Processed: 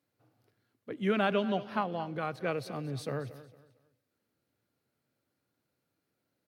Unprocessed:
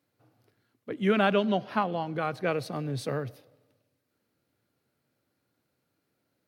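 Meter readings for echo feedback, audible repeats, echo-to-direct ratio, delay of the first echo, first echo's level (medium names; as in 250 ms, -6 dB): 31%, 2, -16.0 dB, 227 ms, -16.5 dB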